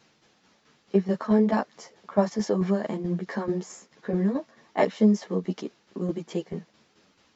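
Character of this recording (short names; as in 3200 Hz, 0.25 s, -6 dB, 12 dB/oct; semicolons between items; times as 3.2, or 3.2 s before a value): tremolo saw down 4.6 Hz, depth 60%; a shimmering, thickened sound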